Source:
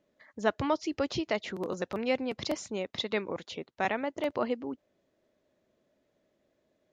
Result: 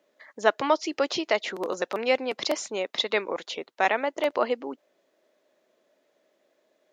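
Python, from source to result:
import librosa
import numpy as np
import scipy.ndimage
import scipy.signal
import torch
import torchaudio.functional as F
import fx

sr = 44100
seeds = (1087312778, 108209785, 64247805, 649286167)

y = scipy.signal.sosfilt(scipy.signal.butter(2, 420.0, 'highpass', fs=sr, output='sos'), x)
y = y * 10.0 ** (7.5 / 20.0)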